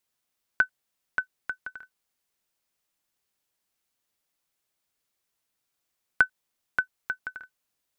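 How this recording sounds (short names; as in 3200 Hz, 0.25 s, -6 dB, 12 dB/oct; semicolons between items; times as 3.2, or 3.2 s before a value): noise floor -81 dBFS; spectral tilt 0.0 dB/oct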